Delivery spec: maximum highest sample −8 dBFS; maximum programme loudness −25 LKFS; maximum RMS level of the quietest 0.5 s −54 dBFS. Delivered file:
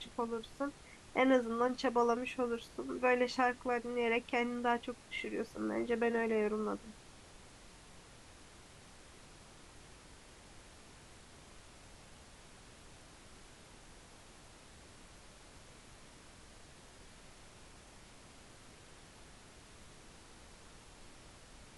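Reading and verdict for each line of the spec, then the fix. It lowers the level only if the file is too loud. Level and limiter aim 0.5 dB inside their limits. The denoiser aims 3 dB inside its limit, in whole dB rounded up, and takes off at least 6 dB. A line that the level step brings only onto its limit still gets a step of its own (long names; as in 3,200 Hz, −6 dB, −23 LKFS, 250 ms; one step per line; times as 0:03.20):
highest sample −18.5 dBFS: in spec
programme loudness −35.0 LKFS: in spec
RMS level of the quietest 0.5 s −57 dBFS: in spec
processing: no processing needed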